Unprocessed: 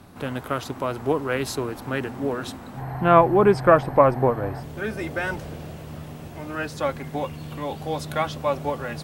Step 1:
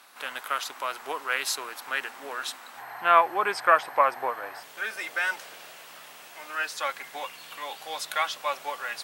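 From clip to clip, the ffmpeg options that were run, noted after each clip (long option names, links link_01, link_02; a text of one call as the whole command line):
ffmpeg -i in.wav -af "highpass=1300,volume=4dB" out.wav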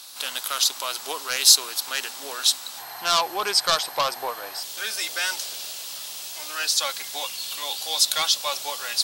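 ffmpeg -i in.wav -af "asoftclip=type=tanh:threshold=-17.5dB,highshelf=frequency=2900:width_type=q:width=1.5:gain=13.5,volume=1.5dB" out.wav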